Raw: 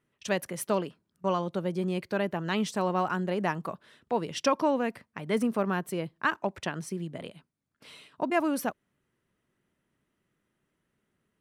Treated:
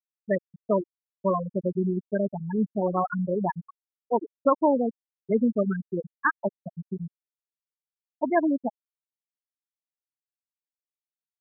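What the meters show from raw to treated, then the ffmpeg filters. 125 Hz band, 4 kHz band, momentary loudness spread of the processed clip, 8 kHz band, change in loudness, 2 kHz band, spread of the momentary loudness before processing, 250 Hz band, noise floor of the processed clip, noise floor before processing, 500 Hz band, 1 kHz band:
+2.5 dB, under -40 dB, 12 LU, under -35 dB, +3.0 dB, -0.5 dB, 11 LU, +4.0 dB, under -85 dBFS, -80 dBFS, +3.5 dB, +1.5 dB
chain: -af "anlmdn=0.0631,afftfilt=real='re*gte(hypot(re,im),0.2)':imag='im*gte(hypot(re,im),0.2)':win_size=1024:overlap=0.75,volume=1.78"

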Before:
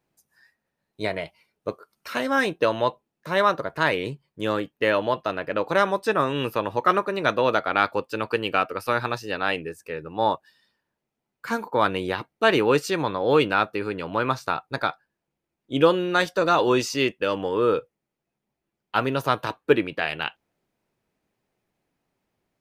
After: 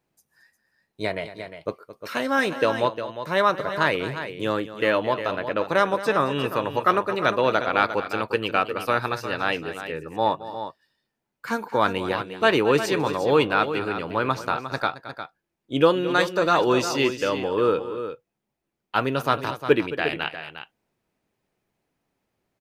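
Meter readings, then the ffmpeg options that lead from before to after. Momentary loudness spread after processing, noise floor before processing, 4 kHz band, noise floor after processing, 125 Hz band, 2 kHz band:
12 LU, -83 dBFS, +0.5 dB, -81 dBFS, +0.5 dB, +0.5 dB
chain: -af "aecho=1:1:220|355:0.188|0.299"

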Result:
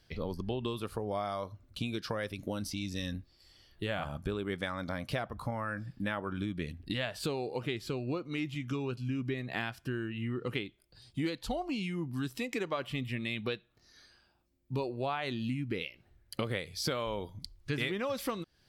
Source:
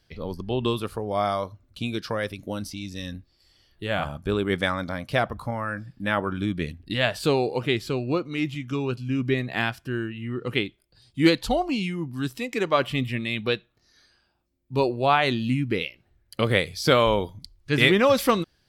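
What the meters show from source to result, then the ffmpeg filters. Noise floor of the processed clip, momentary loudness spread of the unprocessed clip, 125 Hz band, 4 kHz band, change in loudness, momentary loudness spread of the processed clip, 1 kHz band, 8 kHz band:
-69 dBFS, 13 LU, -8.5 dB, -11.0 dB, -11.0 dB, 5 LU, -12.5 dB, -6.5 dB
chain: -af "acompressor=threshold=0.0251:ratio=6"

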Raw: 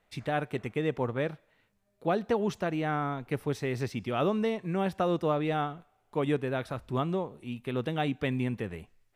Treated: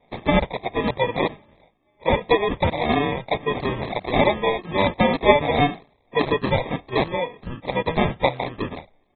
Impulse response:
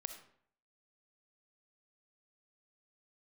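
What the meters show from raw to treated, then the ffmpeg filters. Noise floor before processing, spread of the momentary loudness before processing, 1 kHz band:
-72 dBFS, 8 LU, +11.0 dB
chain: -af "afftfilt=real='re*pow(10,14/40*sin(2*PI*(1.4*log(max(b,1)*sr/1024/100)/log(2)-(-1.8)*(pts-256)/sr)))':imag='im*pow(10,14/40*sin(2*PI*(1.4*log(max(b,1)*sr/1024/100)/log(2)-(-1.8)*(pts-256)/sr)))':win_size=1024:overlap=0.75,tiltshelf=f=650:g=-10,aecho=1:1:1.8:0.9,aresample=16000,acrusher=samples=11:mix=1:aa=0.000001,aresample=44100,volume=1.5" -ar 32000 -c:a aac -b:a 16k

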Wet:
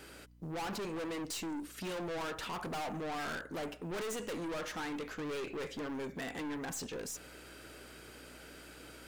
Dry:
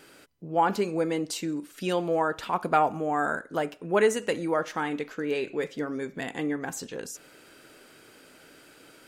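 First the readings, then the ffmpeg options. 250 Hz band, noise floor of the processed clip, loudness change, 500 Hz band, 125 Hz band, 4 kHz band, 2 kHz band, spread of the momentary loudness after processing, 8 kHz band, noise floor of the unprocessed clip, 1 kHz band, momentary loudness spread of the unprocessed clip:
-9.0 dB, -53 dBFS, -11.5 dB, -13.0 dB, -8.0 dB, -4.5 dB, -9.0 dB, 13 LU, -4.5 dB, -54 dBFS, -14.0 dB, 10 LU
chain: -af "aeval=exprs='val(0)+0.001*(sin(2*PI*60*n/s)+sin(2*PI*2*60*n/s)/2+sin(2*PI*3*60*n/s)/3+sin(2*PI*4*60*n/s)/4+sin(2*PI*5*60*n/s)/5)':c=same,aeval=exprs='(tanh(79.4*val(0)+0.2)-tanh(0.2))/79.4':c=same,acrusher=bits=9:mode=log:mix=0:aa=0.000001,volume=1.12"

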